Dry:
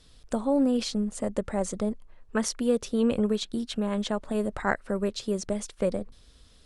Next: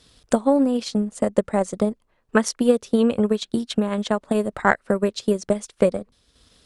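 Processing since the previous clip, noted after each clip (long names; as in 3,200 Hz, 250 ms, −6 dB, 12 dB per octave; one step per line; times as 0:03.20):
high-pass filter 120 Hz 6 dB per octave
transient designer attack +7 dB, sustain −7 dB
level +4.5 dB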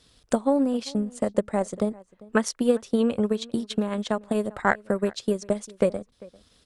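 slap from a distant wall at 68 metres, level −22 dB
level −4 dB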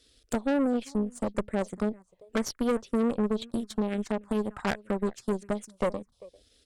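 phaser swept by the level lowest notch 150 Hz, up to 4,000 Hz, full sweep at −18 dBFS
tube saturation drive 25 dB, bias 0.8
level +3 dB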